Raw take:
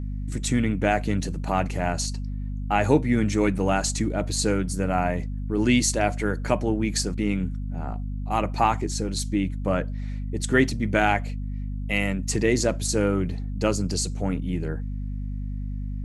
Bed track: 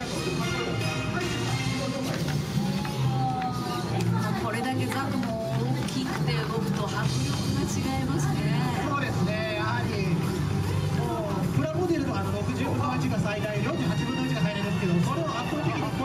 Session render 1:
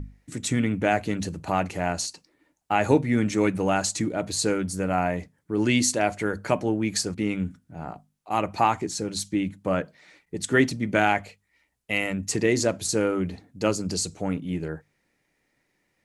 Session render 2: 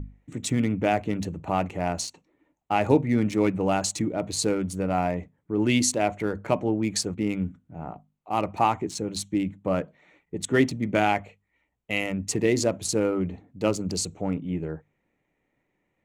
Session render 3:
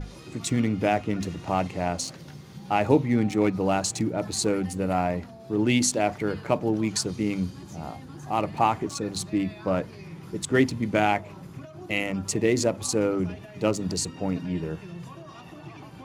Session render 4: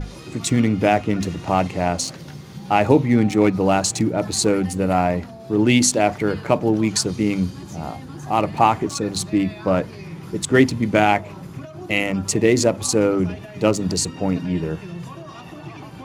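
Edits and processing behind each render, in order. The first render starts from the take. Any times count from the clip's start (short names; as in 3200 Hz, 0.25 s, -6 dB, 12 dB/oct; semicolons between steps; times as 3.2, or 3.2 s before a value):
notches 50/100/150/200/250 Hz
Wiener smoothing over 9 samples; bell 1600 Hz -6.5 dB 0.51 oct
add bed track -15.5 dB
gain +6.5 dB; limiter -2 dBFS, peak gain reduction 2.5 dB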